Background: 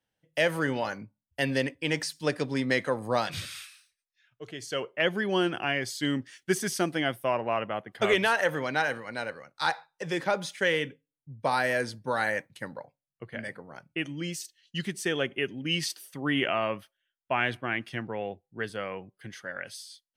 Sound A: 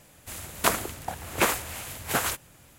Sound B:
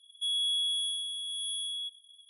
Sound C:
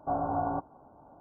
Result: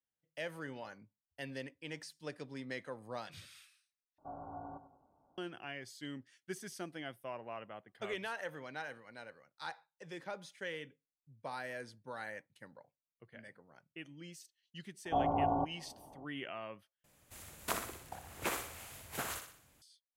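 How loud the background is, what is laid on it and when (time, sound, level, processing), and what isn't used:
background −16.5 dB
0:04.18: overwrite with C −17 dB + feedback echo with a swinging delay time 98 ms, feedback 40%, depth 55 cents, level −12 dB
0:15.05: mix in C −1 dB + low-pass filter 1,100 Hz 24 dB per octave
0:17.04: overwrite with A −14 dB + feedback echo with a high-pass in the loop 61 ms, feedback 48%, high-pass 190 Hz, level −7 dB
not used: B

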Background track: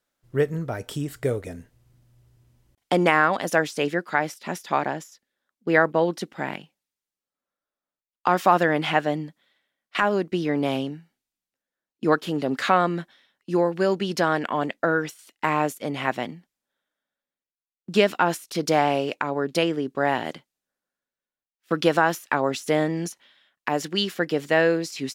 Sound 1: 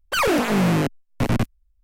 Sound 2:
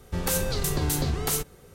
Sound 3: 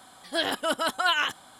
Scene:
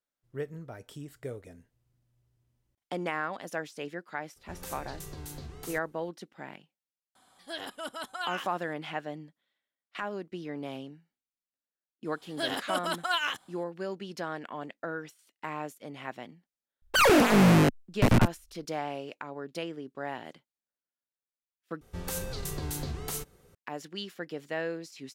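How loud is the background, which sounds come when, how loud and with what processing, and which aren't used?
background track −14 dB
0:04.36: mix in 2 −16.5 dB
0:07.15: mix in 3 −12 dB
0:12.05: mix in 3 −4.5 dB + mu-law and A-law mismatch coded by A
0:16.82: mix in 1 −0.5 dB
0:21.81: overwrite with 2 −9 dB

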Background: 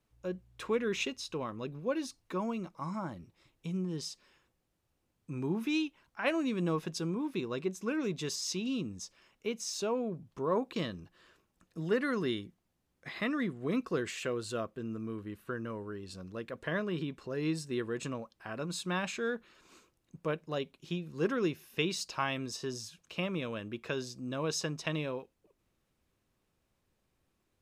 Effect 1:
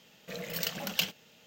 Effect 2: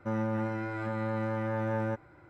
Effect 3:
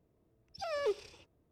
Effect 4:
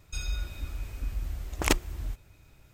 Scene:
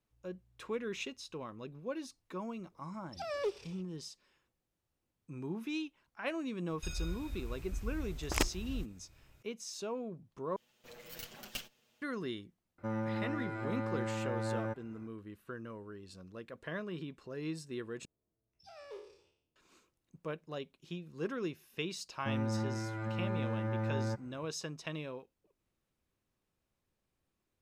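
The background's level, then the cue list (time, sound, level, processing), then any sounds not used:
background −6.5 dB
0:02.58: mix in 3 −2 dB
0:06.70: mix in 4 −6.5 dB
0:10.56: overwrite with 1 −11.5 dB + lower of the sound and its delayed copy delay 8.2 ms
0:12.78: mix in 2 −5 dB
0:18.05: overwrite with 3 −17 dB + peak hold with a decay on every bin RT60 0.61 s
0:22.20: mix in 2 −6.5 dB + parametric band 140 Hz +11 dB

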